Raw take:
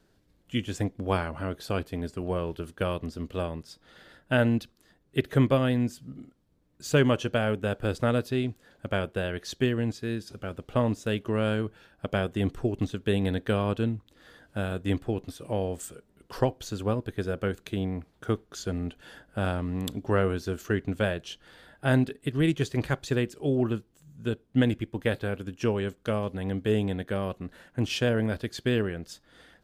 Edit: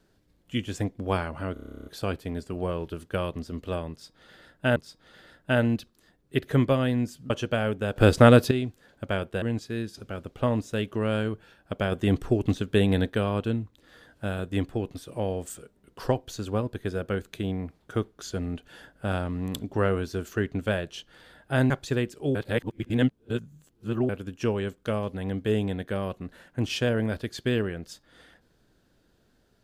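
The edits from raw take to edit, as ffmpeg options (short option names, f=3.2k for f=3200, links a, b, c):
-filter_complex "[0:a]asplit=22[a][b][c][d][e][f][g][h][i][j][k][l][m][n][o][p][q][r][s][t][u][v];[a]atrim=end=1.562[w];[b]atrim=start=1.528:end=1.562[x];[c]atrim=start=1.528:end=1.562[y];[d]atrim=start=1.528:end=1.562[z];[e]atrim=start=1.528:end=1.562[aa];[f]atrim=start=1.528:end=1.562[ab];[g]atrim=start=1.528:end=1.562[ac];[h]atrim=start=1.528:end=1.562[ad];[i]atrim=start=1.528:end=1.562[ae];[j]atrim=start=1.528:end=1.562[af];[k]atrim=start=1.528:end=1.562[ag];[l]atrim=start=1.528:end=4.432[ah];[m]atrim=start=3.578:end=6.122[ai];[n]atrim=start=7.118:end=7.782[aj];[o]atrim=start=7.778:end=8.332,asetpts=PTS-STARTPTS,volume=10.5dB[ak];[p]atrim=start=8.328:end=9.242[al];[q]atrim=start=9.748:end=12.252[am];[r]atrim=start=12.248:end=13.432,asetpts=PTS-STARTPTS,volume=4dB[an];[s]atrim=start=13.428:end=22.032[ao];[t]atrim=start=22.898:end=23.552[ap];[u]atrim=start=23.548:end=25.292,asetpts=PTS-STARTPTS,areverse[aq];[v]atrim=start=25.288[ar];[w][x]acrossfade=d=0.004:c1=hsin:c2=hsin[as];[as][y]acrossfade=d=0.004:c1=hsin:c2=hsin[at];[at][z]acrossfade=d=0.004:c1=hsin:c2=hsin[au];[au][aa]acrossfade=d=0.004:c1=hsin:c2=hsin[av];[av][ab]acrossfade=d=0.004:c1=hsin:c2=hsin[aw];[aw][ac]acrossfade=d=0.004:c1=hsin:c2=hsin[ax];[ax][ad]acrossfade=d=0.004:c1=hsin:c2=hsin[ay];[ay][ae]acrossfade=d=0.004:c1=hsin:c2=hsin[az];[az][af]acrossfade=d=0.004:c1=hsin:c2=hsin[ba];[ba][ag]acrossfade=d=0.004:c1=hsin:c2=hsin[bb];[bb][ah]acrossfade=d=0.004:c1=hsin:c2=hsin[bc];[bc][ai]acrossfade=d=0.004:c1=hsin:c2=hsin[bd];[bd][aj]acrossfade=d=0.004:c1=hsin:c2=hsin[be];[be][ak]acrossfade=d=0.004:c1=hsin:c2=hsin[bf];[bf][al]acrossfade=d=0.004:c1=hsin:c2=hsin[bg];[bg][am]acrossfade=d=0.004:c1=hsin:c2=hsin[bh];[bh][an]acrossfade=d=0.004:c1=hsin:c2=hsin[bi];[bi][ao]acrossfade=d=0.004:c1=hsin:c2=hsin[bj];[bj][ap]acrossfade=d=0.004:c1=hsin:c2=hsin[bk];[bk][aq]acrossfade=d=0.004:c1=hsin:c2=hsin[bl];[bl][ar]acrossfade=d=0.004:c1=hsin:c2=hsin"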